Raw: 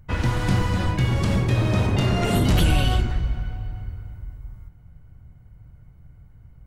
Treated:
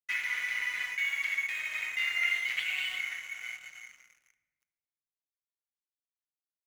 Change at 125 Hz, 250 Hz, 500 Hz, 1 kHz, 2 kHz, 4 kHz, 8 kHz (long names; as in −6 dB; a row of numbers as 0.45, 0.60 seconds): below −40 dB, below −40 dB, below −30 dB, −20.0 dB, +3.5 dB, −6.0 dB, −8.5 dB